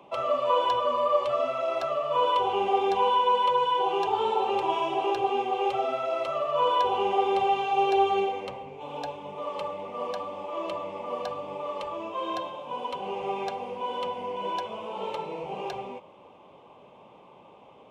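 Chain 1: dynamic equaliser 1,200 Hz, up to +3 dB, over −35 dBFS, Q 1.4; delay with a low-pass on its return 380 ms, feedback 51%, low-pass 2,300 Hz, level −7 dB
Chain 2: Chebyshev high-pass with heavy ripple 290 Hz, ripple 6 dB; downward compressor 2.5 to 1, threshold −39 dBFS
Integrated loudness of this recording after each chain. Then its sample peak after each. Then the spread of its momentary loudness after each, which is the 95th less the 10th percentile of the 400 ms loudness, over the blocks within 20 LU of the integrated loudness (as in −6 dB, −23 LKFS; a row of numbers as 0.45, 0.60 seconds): −25.5, −38.5 LKFS; −9.0, −24.5 dBFS; 12, 9 LU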